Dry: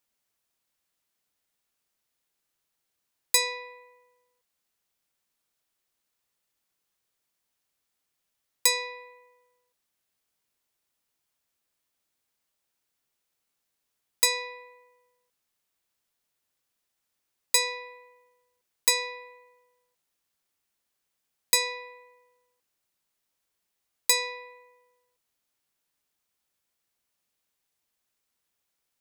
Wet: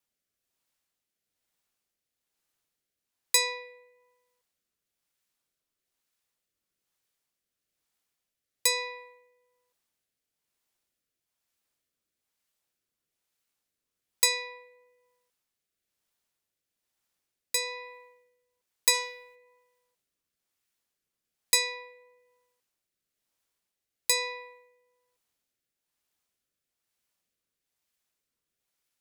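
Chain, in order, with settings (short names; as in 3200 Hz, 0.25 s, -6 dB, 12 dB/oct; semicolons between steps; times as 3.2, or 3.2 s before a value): 18.93–19.34 spectral whitening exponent 0.6; rotary speaker horn 1.1 Hz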